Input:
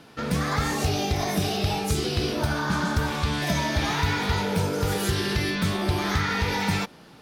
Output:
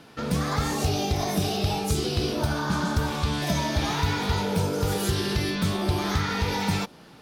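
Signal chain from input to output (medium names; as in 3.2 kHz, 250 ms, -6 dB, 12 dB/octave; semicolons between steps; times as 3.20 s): dynamic bell 1.9 kHz, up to -5 dB, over -42 dBFS, Q 1.5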